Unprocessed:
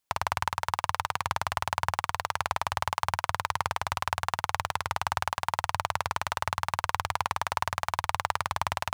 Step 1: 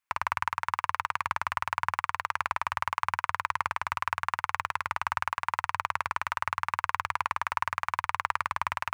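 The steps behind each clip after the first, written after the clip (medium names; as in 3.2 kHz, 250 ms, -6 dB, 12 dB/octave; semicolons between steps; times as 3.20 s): high-order bell 1.6 kHz +10.5 dB; trim -8.5 dB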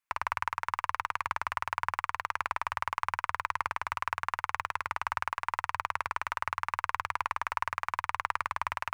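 Chebyshev shaper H 4 -34 dB, 8 -44 dB, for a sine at -9 dBFS; trim -2.5 dB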